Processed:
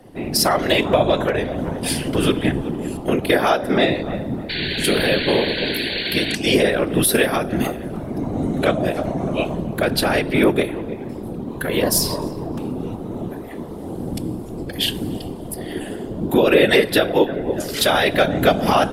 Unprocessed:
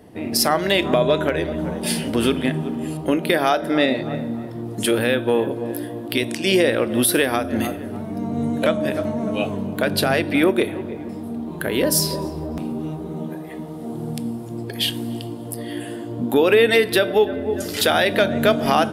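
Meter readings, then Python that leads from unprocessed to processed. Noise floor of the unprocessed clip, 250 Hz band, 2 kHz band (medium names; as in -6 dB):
-32 dBFS, +0.5 dB, +1.5 dB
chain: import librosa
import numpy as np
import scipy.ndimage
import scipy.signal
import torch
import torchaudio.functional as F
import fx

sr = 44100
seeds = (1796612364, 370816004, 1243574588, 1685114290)

y = fx.spec_paint(x, sr, seeds[0], shape='noise', start_s=4.49, length_s=1.87, low_hz=1500.0, high_hz=4600.0, level_db=-27.0)
y = fx.whisperise(y, sr, seeds[1])
y = y * 10.0 ** (1.0 / 20.0)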